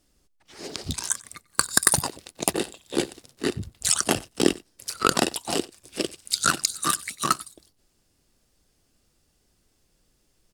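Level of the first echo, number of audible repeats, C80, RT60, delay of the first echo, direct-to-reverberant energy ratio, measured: −23.5 dB, 1, no reverb audible, no reverb audible, 94 ms, no reverb audible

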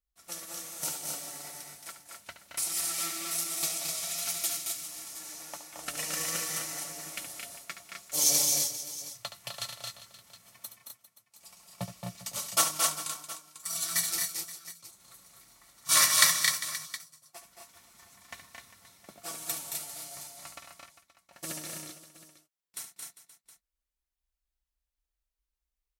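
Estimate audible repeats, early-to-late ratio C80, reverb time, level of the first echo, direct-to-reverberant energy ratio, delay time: 6, no reverb audible, no reverb audible, −10.5 dB, no reverb audible, 71 ms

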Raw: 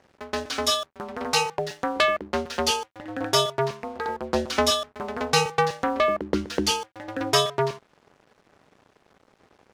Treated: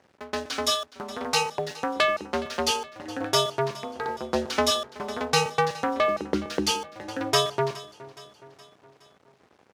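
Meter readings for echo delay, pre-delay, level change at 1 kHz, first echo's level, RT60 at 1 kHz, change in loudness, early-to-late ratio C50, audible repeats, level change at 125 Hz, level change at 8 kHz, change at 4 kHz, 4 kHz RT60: 418 ms, no reverb audible, −1.5 dB, −19.0 dB, no reverb audible, −1.5 dB, no reverb audible, 3, −2.0 dB, −1.5 dB, −1.5 dB, no reverb audible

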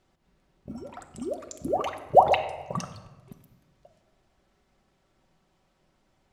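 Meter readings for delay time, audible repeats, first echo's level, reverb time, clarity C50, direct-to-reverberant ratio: no echo audible, no echo audible, no echo audible, 1.2 s, 10.5 dB, 4.5 dB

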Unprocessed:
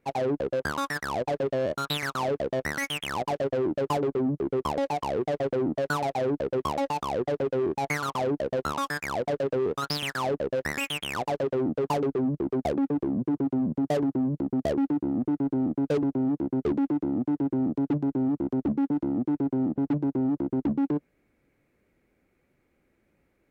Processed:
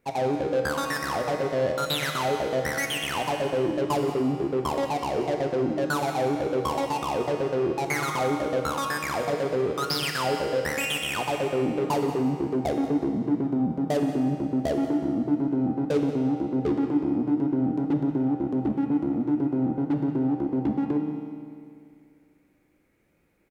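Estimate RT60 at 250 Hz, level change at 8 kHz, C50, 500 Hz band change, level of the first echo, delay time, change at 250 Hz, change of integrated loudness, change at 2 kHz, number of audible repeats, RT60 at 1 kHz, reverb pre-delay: 2.3 s, +5.5 dB, 3.5 dB, +1.5 dB, −14.5 dB, 180 ms, +1.5 dB, +1.5 dB, +2.5 dB, 1, 2.3 s, 6 ms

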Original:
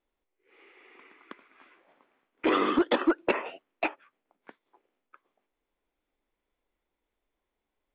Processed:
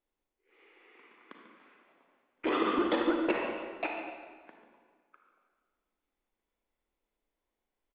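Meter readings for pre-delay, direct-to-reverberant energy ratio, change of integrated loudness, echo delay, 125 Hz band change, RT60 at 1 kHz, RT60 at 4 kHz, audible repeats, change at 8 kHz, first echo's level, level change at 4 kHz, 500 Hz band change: 32 ms, 1.0 dB, −4.0 dB, 143 ms, −2.5 dB, 1.5 s, 1.3 s, 1, can't be measured, −12.0 dB, −3.5 dB, −3.0 dB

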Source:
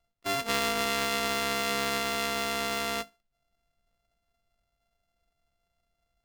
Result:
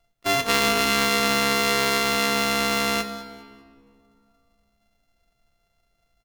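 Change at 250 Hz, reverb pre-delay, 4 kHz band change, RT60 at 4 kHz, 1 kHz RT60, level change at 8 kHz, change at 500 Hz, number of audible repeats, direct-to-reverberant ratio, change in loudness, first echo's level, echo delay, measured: +9.5 dB, 3 ms, +8.0 dB, 1.3 s, 2.2 s, +8.0 dB, +7.0 dB, 2, 9.5 dB, +8.0 dB, −18.0 dB, 201 ms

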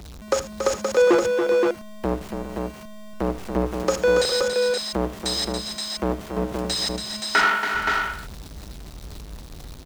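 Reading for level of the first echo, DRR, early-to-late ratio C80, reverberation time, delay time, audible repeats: −15.0 dB, no reverb audible, no reverb audible, no reverb audible, 78 ms, 4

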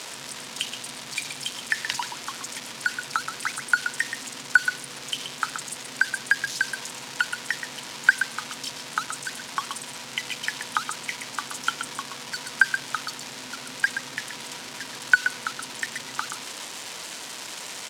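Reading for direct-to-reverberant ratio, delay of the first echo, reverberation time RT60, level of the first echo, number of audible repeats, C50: no reverb audible, 126 ms, no reverb audible, −8.5 dB, 1, no reverb audible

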